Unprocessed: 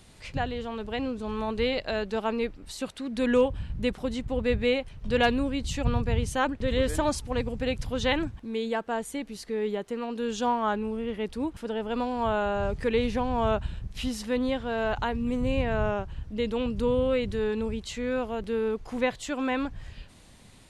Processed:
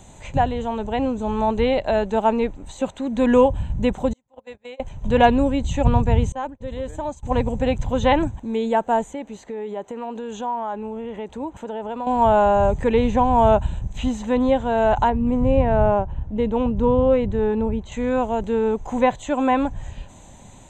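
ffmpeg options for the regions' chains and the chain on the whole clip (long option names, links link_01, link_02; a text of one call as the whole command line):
ffmpeg -i in.wav -filter_complex "[0:a]asettb=1/sr,asplit=3[link_01][link_02][link_03];[link_01]atrim=end=4.134[link_04];[link_02]atrim=start=4.13:end=4.8,asetpts=PTS-STARTPTS,afade=type=in:duration=0.004:curve=qsin,afade=type=out:start_time=0.666:duration=0.004:curve=qsin,agate=range=-34dB:threshold=-24dB:ratio=16:release=100:detection=peak,highpass=frequency=780:poles=1,acompressor=threshold=-43dB:ratio=3:attack=3.2:release=140:knee=1:detection=peak[link_05];[link_03]atrim=start=4.796[link_06];[link_04][link_05]acrossfade=duration=0.004:curve1=hsin:curve2=qsin[link_07];[link_07][link_06]acrossfade=duration=0.004:curve1=qsin:curve2=hsin,asettb=1/sr,asplit=3[link_08][link_09][link_10];[link_08]atrim=end=6.324[link_11];[link_09]atrim=start=6.32:end=7.23,asetpts=PTS-STARTPTS,afade=type=in:duration=0.004:curve=qsin,afade=type=out:start_time=0.906:duration=0.004:curve=qsin,agate=range=-33dB:threshold=-25dB:ratio=3:release=100:detection=peak,highshelf=frequency=9100:gain=-6.5,acompressor=threshold=-44dB:ratio=2:attack=3.2:release=140:knee=1:detection=peak[link_12];[link_10]atrim=start=7.226[link_13];[link_11][link_12]acrossfade=duration=0.004:curve1=hsin:curve2=qsin[link_14];[link_14][link_13]acrossfade=duration=0.004:curve1=qsin:curve2=hsin,asettb=1/sr,asplit=3[link_15][link_16][link_17];[link_15]atrim=end=9.134[link_18];[link_16]atrim=start=9.13:end=12.07,asetpts=PTS-STARTPTS,afade=type=in:duration=0.004:curve=qsin,afade=type=out:start_time=2.936:duration=0.004:curve=qsin,highpass=46,bass=frequency=250:gain=-7,treble=frequency=4000:gain=-7,acompressor=threshold=-35dB:ratio=4:attack=3.2:release=140:knee=1:detection=peak[link_19];[link_17]atrim=start=12.066[link_20];[link_18][link_19]acrossfade=duration=0.004:curve1=hsin:curve2=qsin[link_21];[link_21][link_20]acrossfade=duration=0.004:curve1=qsin:curve2=hsin,asettb=1/sr,asplit=3[link_22][link_23][link_24];[link_22]atrim=end=15.104[link_25];[link_23]atrim=start=15.1:end=17.92,asetpts=PTS-STARTPTS,afade=type=in:duration=0.004:curve=qsin,afade=type=out:start_time=2.816:duration=0.004:curve=qsin,adynamicsmooth=sensitivity=1.5:basefreq=4600,highshelf=frequency=2700:gain=-8[link_26];[link_24]atrim=start=17.916[link_27];[link_25][link_26]acrossfade=duration=0.004:curve1=hsin:curve2=qsin[link_28];[link_28][link_27]acrossfade=duration=0.004:curve1=qsin:curve2=hsin,tiltshelf=frequency=670:gain=3.5,acrossover=split=4200[link_29][link_30];[link_30]acompressor=threshold=-59dB:ratio=4:attack=1:release=60[link_31];[link_29][link_31]amix=inputs=2:normalize=0,superequalizer=8b=2:9b=2.82:14b=0.355:15b=3.55:16b=0.398,volume=5.5dB" out.wav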